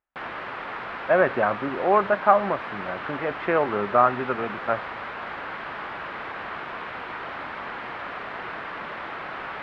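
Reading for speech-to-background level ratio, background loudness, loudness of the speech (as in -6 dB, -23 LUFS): 10.0 dB, -33.5 LUFS, -23.5 LUFS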